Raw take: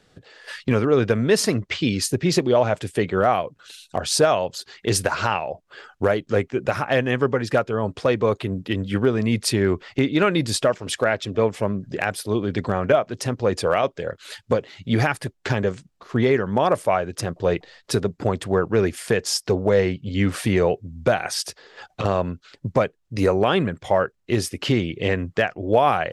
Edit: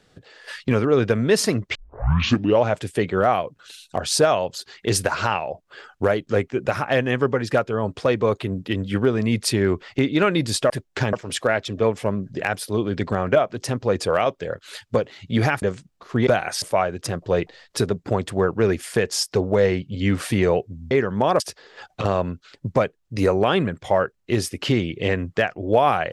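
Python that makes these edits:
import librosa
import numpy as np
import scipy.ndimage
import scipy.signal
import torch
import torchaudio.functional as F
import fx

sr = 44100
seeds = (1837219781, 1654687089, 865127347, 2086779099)

y = fx.edit(x, sr, fx.tape_start(start_s=1.75, length_s=0.88),
    fx.move(start_s=15.19, length_s=0.43, to_s=10.7),
    fx.swap(start_s=16.27, length_s=0.49, other_s=21.05, other_length_s=0.35), tone=tone)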